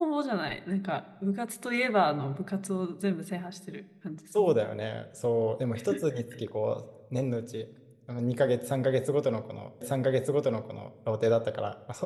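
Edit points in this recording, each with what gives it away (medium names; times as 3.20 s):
9.81 s: repeat of the last 1.2 s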